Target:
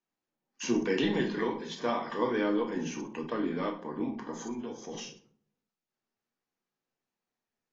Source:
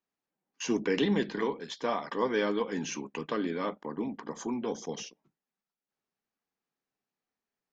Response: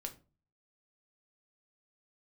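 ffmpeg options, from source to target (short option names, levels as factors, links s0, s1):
-filter_complex "[0:a]asettb=1/sr,asplit=3[s0][s1][s2];[s0]atrim=end=2.304[s3];[s1]atrim=start=2.3:end=3.58,asetpts=PTS-STARTPTS,afade=t=in:d=0.004:c=qsin,afade=t=out:st=1.276:d=0.004:c=qsin,equalizer=f=5100:t=o:w=2.6:g=-6[s4];[s2]atrim=start=3.576[s5];[s3][s4]acrossfade=d=0.004:c1=hsin:c2=qsin[s6];[s6][s5]acrossfade=d=0.004:c1=qsin:c2=hsin,asettb=1/sr,asplit=3[s7][s8][s9];[s7]atrim=end=4.434[s10];[s8]atrim=start=4.43:end=4.93,asetpts=PTS-STARTPTS,afade=t=in:d=0.004:c=qsin,afade=t=out:st=0.496:d=0.004:c=qsin,acompressor=threshold=0.0141:ratio=6[s11];[s9]atrim=start=4.926[s12];[s10][s11]acrossfade=d=0.004:c1=hsin:c2=qsin[s13];[s13][s12]acrossfade=d=0.004:c1=qsin:c2=hsin[s14];[1:a]atrim=start_sample=2205,asetrate=28665,aresample=44100[s15];[s14][s15]afir=irnorm=-1:irlink=0" -ar 16000 -c:a aac -b:a 24k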